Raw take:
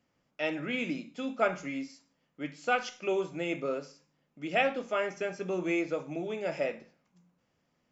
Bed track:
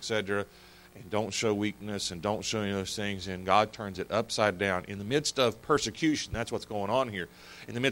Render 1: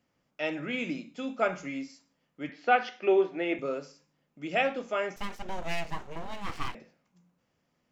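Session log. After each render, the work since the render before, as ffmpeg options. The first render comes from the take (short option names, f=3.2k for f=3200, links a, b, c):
-filter_complex "[0:a]asettb=1/sr,asplit=3[a][b][c];[a]atrim=end=2.494[d];[b]atrim=start=2.49:end=3.59,asetpts=PTS-STARTPTS,afade=t=in:d=0.004:c=qsin,afade=t=out:st=1.096:d=0.004:c=qsin,highpass=f=210:w=0.5412,highpass=f=210:w=1.3066,equalizer=f=220:t=q:w=4:g=5,equalizer=f=390:t=q:w=4:g=7,equalizer=f=750:t=q:w=4:g=7,equalizer=f=1.8k:t=q:w=4:g=9,lowpass=f=4.5k:w=0.5412,lowpass=f=4.5k:w=1.3066[e];[c]atrim=start=3.586[f];[d][e]acrossfade=d=0.004:c1=hsin:c2=qsin[g];[g][f]acrossfade=d=0.004:c1=qsin:c2=hsin,asettb=1/sr,asplit=3[h][i][j];[h]atrim=end=5.164[k];[i]atrim=start=5.16:end=6.75,asetpts=PTS-STARTPTS,afade=t=in:d=0.004:c=qsin,afade=t=out:st=1.586:d=0.004:c=qsin,aeval=exprs='abs(val(0))':c=same[l];[j]atrim=start=6.746[m];[k][l]acrossfade=d=0.004:c1=hsin:c2=qsin[n];[n][m]acrossfade=d=0.004:c1=qsin:c2=hsin"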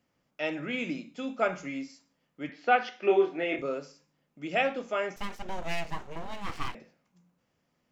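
-filter_complex "[0:a]asettb=1/sr,asplit=3[a][b][c];[a]atrim=end=2.974[d];[b]atrim=start=2.97:end=3.62,asetpts=PTS-STARTPTS,afade=t=in:d=0.004:c=qsin,afade=t=out:st=0.646:d=0.004:c=qsin,asplit=2[e][f];[f]adelay=25,volume=-3dB[g];[e][g]amix=inputs=2:normalize=0,atrim=end_sample=28665[h];[c]atrim=start=3.616[i];[d][h]acrossfade=d=0.004:c1=hsin:c2=qsin[j];[j][i]acrossfade=d=0.004:c1=qsin:c2=hsin"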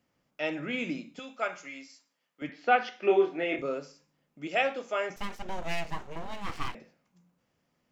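-filter_complex "[0:a]asettb=1/sr,asplit=3[a][b][c];[a]atrim=end=1.194[d];[b]atrim=start=1.19:end=2.42,asetpts=PTS-STARTPTS,afade=t=in:d=0.004:c=qsin,afade=t=out:st=1.226:d=0.004:c=qsin,highpass=f=1.1k:p=1[e];[c]atrim=start=2.416[f];[d][e]acrossfade=d=0.004:c1=hsin:c2=qsin[g];[g][f]acrossfade=d=0.004:c1=qsin:c2=hsin,asettb=1/sr,asplit=3[h][i][j];[h]atrim=end=4.474[k];[i]atrim=start=4.47:end=5.1,asetpts=PTS-STARTPTS,afade=t=in:d=0.004:c=qsin,afade=t=out:st=0.626:d=0.004:c=qsin,bass=f=250:g=-11,treble=f=4k:g=3[l];[j]atrim=start=5.096[m];[k][l]acrossfade=d=0.004:c1=hsin:c2=qsin[n];[n][m]acrossfade=d=0.004:c1=qsin:c2=hsin"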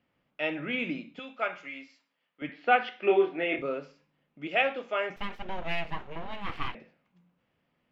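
-af "highshelf=f=4.5k:t=q:w=1.5:g=-13.5"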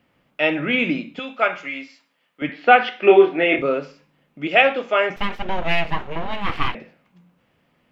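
-af "volume=11.5dB,alimiter=limit=-1dB:level=0:latency=1"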